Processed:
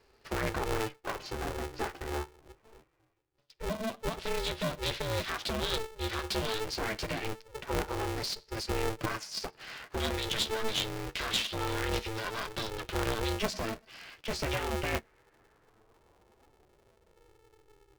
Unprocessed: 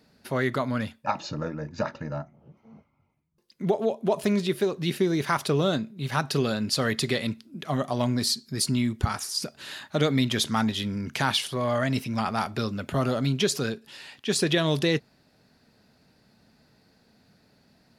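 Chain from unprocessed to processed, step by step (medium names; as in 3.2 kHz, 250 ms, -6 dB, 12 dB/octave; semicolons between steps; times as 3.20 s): high-pass 57 Hz 24 dB/octave; band-stop 4.1 kHz, Q 14; peak limiter -18 dBFS, peak gain reduction 8.5 dB; LFO notch square 0.15 Hz 600–3600 Hz; flange 0.24 Hz, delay 5.4 ms, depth 9 ms, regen +17%; low-pass sweep 3.9 kHz -> 160 Hz, 14.35–17.95 s; one-sided clip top -32.5 dBFS; polarity switched at an audio rate 220 Hz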